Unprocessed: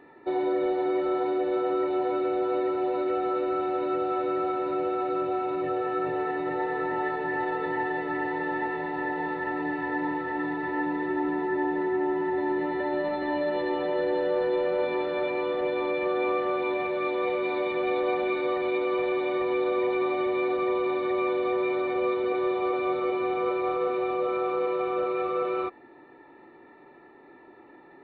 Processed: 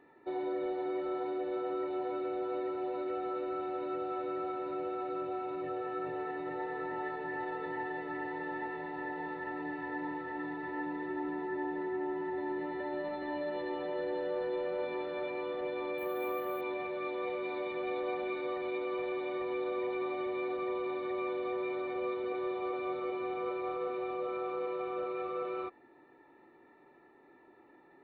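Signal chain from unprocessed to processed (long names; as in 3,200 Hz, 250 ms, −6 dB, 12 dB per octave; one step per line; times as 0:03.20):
0:15.98–0:16.61: bad sample-rate conversion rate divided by 3×, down none, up hold
level −9 dB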